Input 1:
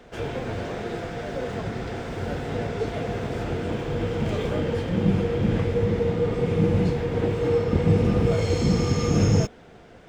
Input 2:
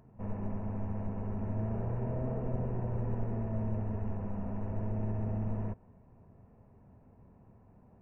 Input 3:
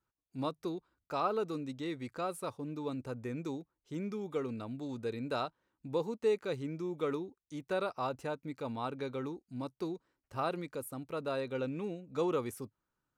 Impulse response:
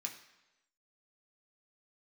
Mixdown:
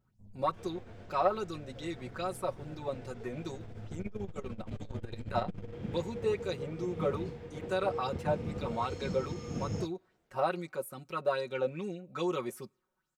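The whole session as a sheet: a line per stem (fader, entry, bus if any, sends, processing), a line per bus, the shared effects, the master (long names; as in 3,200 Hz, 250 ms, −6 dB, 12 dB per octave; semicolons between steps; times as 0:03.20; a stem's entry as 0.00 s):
−14.5 dB, 0.40 s, no send, mains-hum notches 50/100 Hz; expander for the loud parts 1.5 to 1, over −43 dBFS
0:03.43 −16 dB → 0:04.06 −4 dB, 0.00 s, no send, spectral envelope exaggerated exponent 2
−3.5 dB, 0.00 s, send −22 dB, comb filter 5.4 ms, depth 87%; auto-filter bell 2.4 Hz 550–7,900 Hz +12 dB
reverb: on, RT60 1.0 s, pre-delay 3 ms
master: saturating transformer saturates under 320 Hz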